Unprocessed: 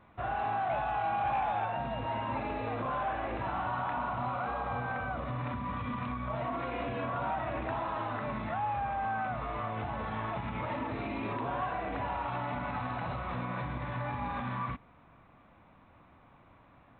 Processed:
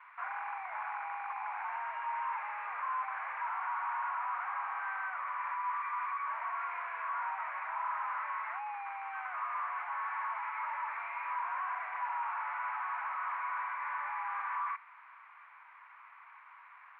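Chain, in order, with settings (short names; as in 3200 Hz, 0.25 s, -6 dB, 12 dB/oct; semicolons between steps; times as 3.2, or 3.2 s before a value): delta modulation 32 kbps, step -53 dBFS; elliptic band-pass 960–2300 Hz, stop band 70 dB; gain +8 dB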